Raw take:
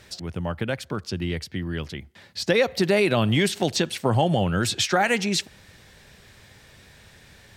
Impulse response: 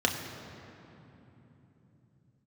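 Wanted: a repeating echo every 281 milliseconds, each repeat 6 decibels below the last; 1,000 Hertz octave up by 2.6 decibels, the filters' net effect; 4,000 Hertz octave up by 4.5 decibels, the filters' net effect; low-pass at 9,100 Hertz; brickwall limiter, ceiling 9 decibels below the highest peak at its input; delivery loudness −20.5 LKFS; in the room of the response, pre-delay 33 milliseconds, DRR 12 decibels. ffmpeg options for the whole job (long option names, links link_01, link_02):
-filter_complex "[0:a]lowpass=9100,equalizer=frequency=1000:width_type=o:gain=3.5,equalizer=frequency=4000:width_type=o:gain=5.5,alimiter=limit=-14dB:level=0:latency=1,aecho=1:1:281|562|843|1124|1405|1686:0.501|0.251|0.125|0.0626|0.0313|0.0157,asplit=2[link_01][link_02];[1:a]atrim=start_sample=2205,adelay=33[link_03];[link_02][link_03]afir=irnorm=-1:irlink=0,volume=-23dB[link_04];[link_01][link_04]amix=inputs=2:normalize=0,volume=4dB"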